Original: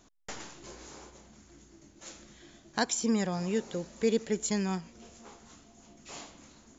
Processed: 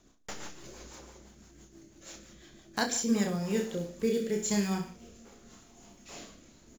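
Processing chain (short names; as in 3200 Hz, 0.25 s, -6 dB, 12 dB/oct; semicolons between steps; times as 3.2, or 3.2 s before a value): block floating point 5-bit; reverse bouncing-ball echo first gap 30 ms, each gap 1.1×, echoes 5; rotary speaker horn 6 Hz, later 0.85 Hz, at 2.76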